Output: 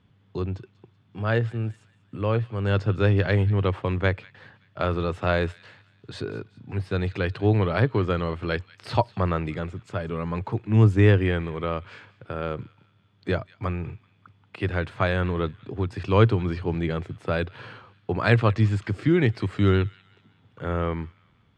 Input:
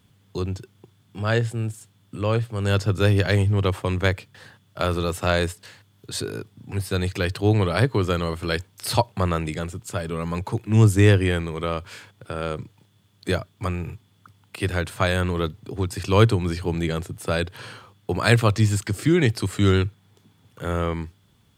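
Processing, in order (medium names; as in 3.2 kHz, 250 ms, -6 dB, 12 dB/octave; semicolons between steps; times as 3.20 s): low-pass 2.7 kHz 12 dB/octave; feedback echo behind a high-pass 190 ms, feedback 43%, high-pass 1.9 kHz, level -18.5 dB; trim -1.5 dB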